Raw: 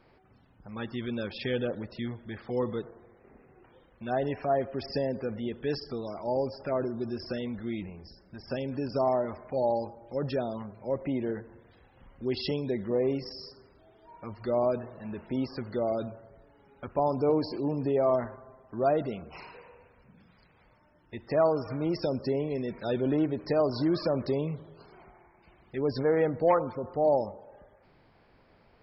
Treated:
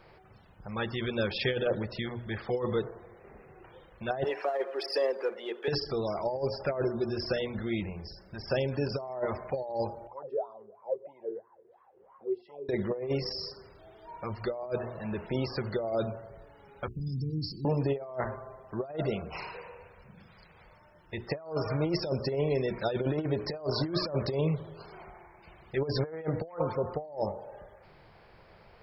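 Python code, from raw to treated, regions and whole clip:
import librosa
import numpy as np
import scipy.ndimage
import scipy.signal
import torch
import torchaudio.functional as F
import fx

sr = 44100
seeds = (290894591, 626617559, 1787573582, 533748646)

y = fx.chain(x, sr, fx.halfwave_gain(db=-3.0),
    fx.cheby2_highpass(hz=170.0, order=4, stop_db=40),
    fx.peak_eq(hz=700.0, db=-4.0, octaves=0.35), at=(4.24, 5.68))
y = fx.chain(y, sr, fx.wah_lfo(hz=3.0, low_hz=380.0, high_hz=1100.0, q=13.0),
    fx.band_squash(depth_pct=40), at=(10.07, 12.69))
y = fx.chain(y, sr, fx.cheby2_bandstop(low_hz=580.0, high_hz=1900.0, order=4, stop_db=60),
    fx.peak_eq(hz=510.0, db=10.5, octaves=0.29), at=(16.88, 17.65))
y = fx.peak_eq(y, sr, hz=260.0, db=-11.5, octaves=0.38)
y = fx.hum_notches(y, sr, base_hz=60, count=7)
y = fx.over_compress(y, sr, threshold_db=-32.0, ratio=-0.5)
y = y * 10.0 ** (3.0 / 20.0)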